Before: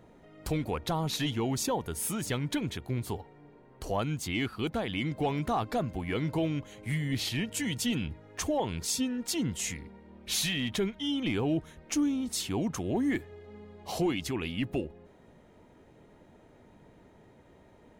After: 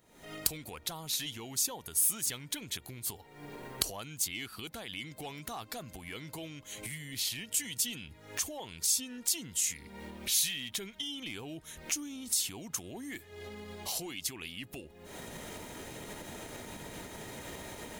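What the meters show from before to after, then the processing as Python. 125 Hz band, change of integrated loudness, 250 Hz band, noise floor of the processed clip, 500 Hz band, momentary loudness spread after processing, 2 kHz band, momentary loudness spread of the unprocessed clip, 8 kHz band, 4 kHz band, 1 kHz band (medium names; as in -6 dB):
-13.5 dB, -3.0 dB, -14.0 dB, -56 dBFS, -11.5 dB, 15 LU, -4.5 dB, 7 LU, +5.0 dB, -0.5 dB, -10.0 dB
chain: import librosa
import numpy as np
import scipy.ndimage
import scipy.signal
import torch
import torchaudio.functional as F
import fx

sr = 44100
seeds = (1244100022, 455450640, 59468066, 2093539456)

y = fx.recorder_agc(x, sr, target_db=-23.5, rise_db_per_s=72.0, max_gain_db=30)
y = librosa.effects.preemphasis(y, coef=0.9, zi=[0.0])
y = y * 10.0 ** (4.0 / 20.0)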